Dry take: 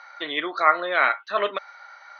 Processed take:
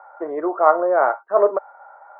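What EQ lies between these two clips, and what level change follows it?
Butterworth low-pass 1,400 Hz 36 dB per octave
flat-topped bell 560 Hz +11.5 dB
−1.0 dB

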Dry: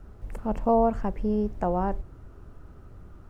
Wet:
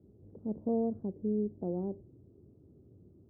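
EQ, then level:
high-pass filter 91 Hz 24 dB per octave
transistor ladder low-pass 470 Hz, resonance 35%
0.0 dB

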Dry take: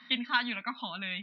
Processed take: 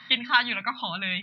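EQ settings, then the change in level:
low shelf with overshoot 170 Hz +9.5 dB, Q 3
mains-hum notches 50/100/150/200/250 Hz
+7.5 dB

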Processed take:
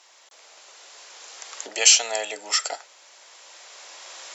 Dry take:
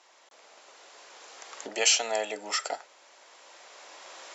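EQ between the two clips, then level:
high-pass filter 310 Hz 12 dB per octave
high-shelf EQ 2,500 Hz +10 dB
0.0 dB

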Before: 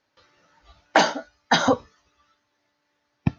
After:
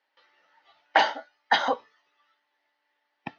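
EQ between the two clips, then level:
loudspeaker in its box 400–5,000 Hz, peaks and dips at 840 Hz +7 dB, 1,900 Hz +8 dB, 3,000 Hz +6 dB
−6.5 dB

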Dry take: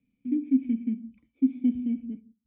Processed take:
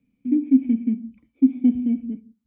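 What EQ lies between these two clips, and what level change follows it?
low-shelf EQ 320 Hz −3.5 dB
dynamic equaliser 850 Hz, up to +6 dB, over −46 dBFS, Q 1.3
high-shelf EQ 2,100 Hz −9 dB
+8.5 dB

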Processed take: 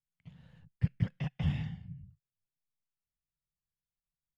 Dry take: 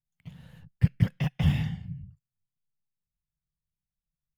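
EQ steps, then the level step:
high-frequency loss of the air 73 metres
−7.5 dB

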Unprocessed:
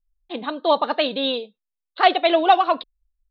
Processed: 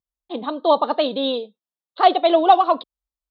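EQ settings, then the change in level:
high-pass filter 140 Hz 12 dB per octave
flat-topped bell 2,000 Hz −8 dB 1.1 octaves
high-shelf EQ 3,400 Hz −7.5 dB
+2.5 dB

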